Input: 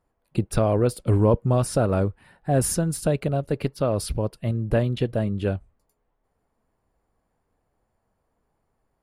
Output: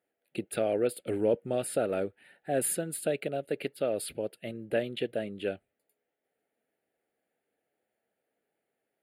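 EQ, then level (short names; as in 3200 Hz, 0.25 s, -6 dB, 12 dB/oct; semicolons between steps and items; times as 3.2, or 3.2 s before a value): HPF 420 Hz 12 dB/oct; fixed phaser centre 2500 Hz, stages 4; 0.0 dB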